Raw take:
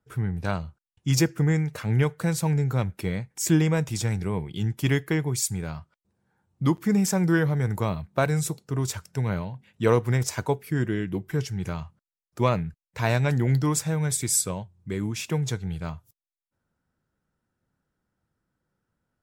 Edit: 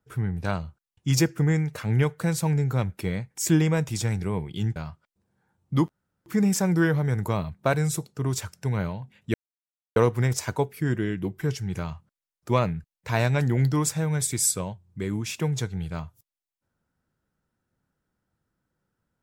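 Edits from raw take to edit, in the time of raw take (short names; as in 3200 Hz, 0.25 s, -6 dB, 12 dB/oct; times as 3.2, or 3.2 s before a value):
4.76–5.65 cut
6.78 insert room tone 0.37 s
9.86 insert silence 0.62 s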